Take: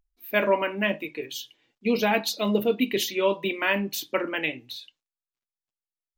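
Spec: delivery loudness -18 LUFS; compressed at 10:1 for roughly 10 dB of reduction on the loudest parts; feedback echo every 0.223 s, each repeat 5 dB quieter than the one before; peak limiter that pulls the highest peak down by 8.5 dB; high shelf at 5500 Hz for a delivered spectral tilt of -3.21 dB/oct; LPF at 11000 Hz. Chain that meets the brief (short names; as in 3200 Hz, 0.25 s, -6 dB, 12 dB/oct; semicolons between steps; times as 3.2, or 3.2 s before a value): LPF 11000 Hz; high shelf 5500 Hz +4 dB; compressor 10:1, threshold -27 dBFS; limiter -24 dBFS; feedback echo 0.223 s, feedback 56%, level -5 dB; gain +15.5 dB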